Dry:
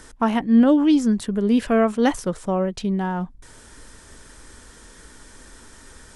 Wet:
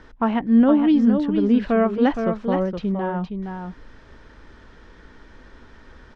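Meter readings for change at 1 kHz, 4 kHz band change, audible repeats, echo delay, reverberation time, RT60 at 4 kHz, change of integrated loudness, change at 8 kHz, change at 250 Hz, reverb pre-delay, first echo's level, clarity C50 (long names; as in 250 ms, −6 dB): −0.5 dB, −5.0 dB, 1, 467 ms, no reverb audible, no reverb audible, 0.0 dB, below −20 dB, +0.5 dB, no reverb audible, −6.5 dB, no reverb audible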